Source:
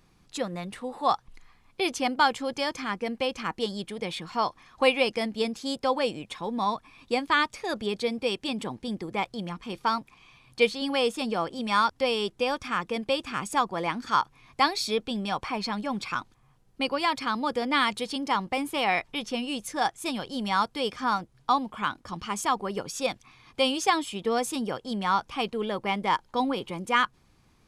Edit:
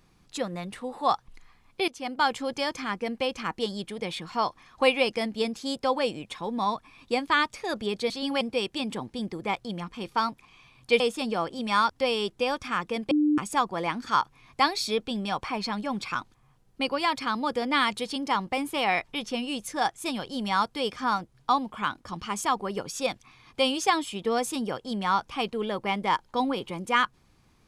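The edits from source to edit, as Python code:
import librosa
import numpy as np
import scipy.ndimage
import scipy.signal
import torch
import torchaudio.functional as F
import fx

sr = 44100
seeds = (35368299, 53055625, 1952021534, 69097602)

y = fx.edit(x, sr, fx.fade_in_from(start_s=1.88, length_s=0.48, floor_db=-17.0),
    fx.move(start_s=10.69, length_s=0.31, to_s=8.1),
    fx.bleep(start_s=13.11, length_s=0.27, hz=299.0, db=-19.0), tone=tone)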